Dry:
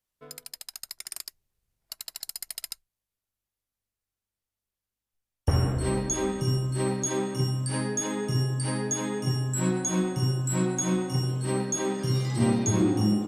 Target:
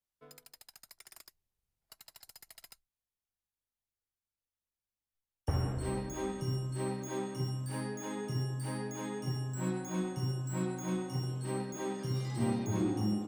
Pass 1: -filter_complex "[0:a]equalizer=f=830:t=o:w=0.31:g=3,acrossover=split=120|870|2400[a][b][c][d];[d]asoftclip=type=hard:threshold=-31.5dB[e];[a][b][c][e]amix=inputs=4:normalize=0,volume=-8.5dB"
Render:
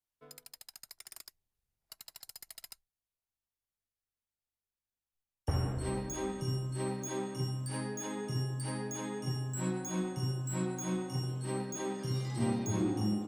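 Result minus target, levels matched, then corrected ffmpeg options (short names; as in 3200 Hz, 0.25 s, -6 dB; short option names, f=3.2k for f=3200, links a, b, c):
hard clip: distortion -5 dB
-filter_complex "[0:a]equalizer=f=830:t=o:w=0.31:g=3,acrossover=split=120|870|2400[a][b][c][d];[d]asoftclip=type=hard:threshold=-39dB[e];[a][b][c][e]amix=inputs=4:normalize=0,volume=-8.5dB"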